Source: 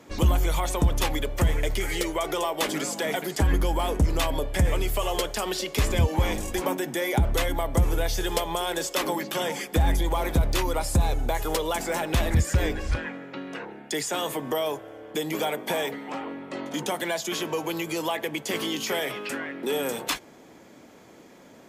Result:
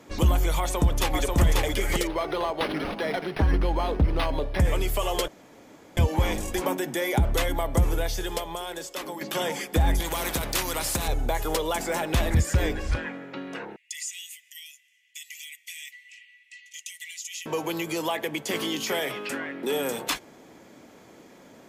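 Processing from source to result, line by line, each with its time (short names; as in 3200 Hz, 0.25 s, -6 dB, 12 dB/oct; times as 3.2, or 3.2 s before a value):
0.59–1.42 echo throw 0.54 s, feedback 15%, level -2 dB
2.07–4.6 decimation joined by straight lines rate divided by 6×
5.28–5.97 room tone
7.85–9.21 fade out quadratic, to -8.5 dB
10–11.08 spectral compressor 2:1
13.76–17.46 rippled Chebyshev high-pass 1900 Hz, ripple 9 dB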